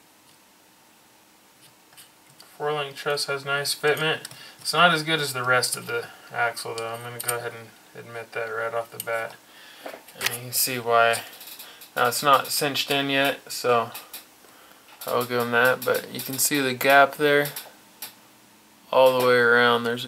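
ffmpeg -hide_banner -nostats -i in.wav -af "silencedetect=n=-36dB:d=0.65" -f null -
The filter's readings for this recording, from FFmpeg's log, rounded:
silence_start: 0.00
silence_end: 1.99 | silence_duration: 1.99
silence_start: 18.09
silence_end: 18.93 | silence_duration: 0.84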